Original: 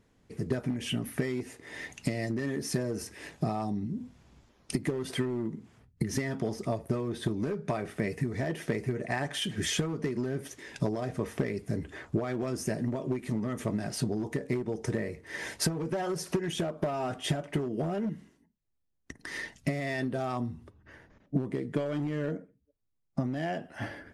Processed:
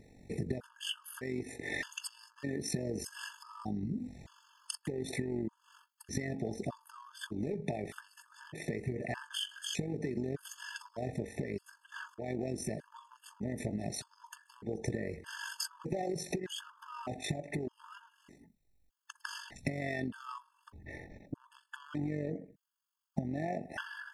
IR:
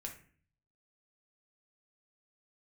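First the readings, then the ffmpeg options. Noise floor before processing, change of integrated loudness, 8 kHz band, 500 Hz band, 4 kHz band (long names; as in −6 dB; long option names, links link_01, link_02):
−70 dBFS, −6.5 dB, −4.0 dB, −7.0 dB, −3.5 dB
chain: -af "acompressor=threshold=-41dB:ratio=10,tremolo=f=47:d=0.571,afftfilt=real='re*gt(sin(2*PI*0.82*pts/sr)*(1-2*mod(floor(b*sr/1024/880),2)),0)':imag='im*gt(sin(2*PI*0.82*pts/sr)*(1-2*mod(floor(b*sr/1024/880),2)),0)':win_size=1024:overlap=0.75,volume=11dB"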